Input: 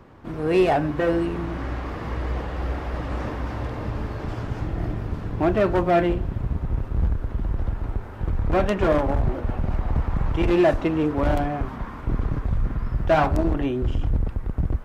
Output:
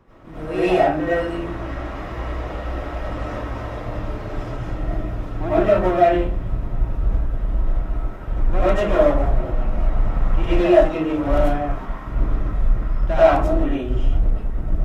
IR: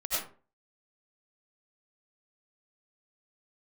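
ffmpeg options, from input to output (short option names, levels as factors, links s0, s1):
-filter_complex "[0:a]bandreject=f=4500:w=13[s0];[1:a]atrim=start_sample=2205[s1];[s0][s1]afir=irnorm=-1:irlink=0,volume=0.596"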